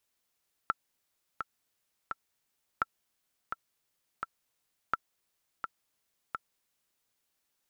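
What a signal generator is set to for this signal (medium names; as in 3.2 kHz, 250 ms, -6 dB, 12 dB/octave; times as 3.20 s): metronome 85 bpm, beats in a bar 3, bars 3, 1.34 kHz, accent 7 dB -14 dBFS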